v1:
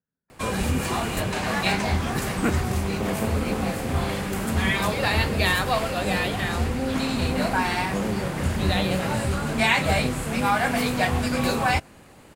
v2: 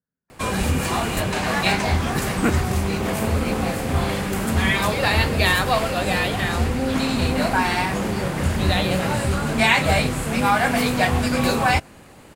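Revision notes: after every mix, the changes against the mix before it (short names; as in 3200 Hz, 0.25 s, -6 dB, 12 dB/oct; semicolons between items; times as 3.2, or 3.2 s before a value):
background +3.5 dB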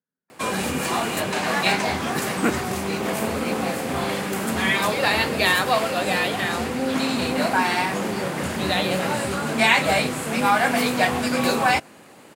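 master: add HPF 200 Hz 12 dB/oct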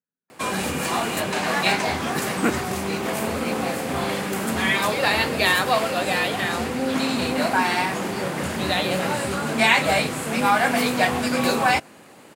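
speech -4.5 dB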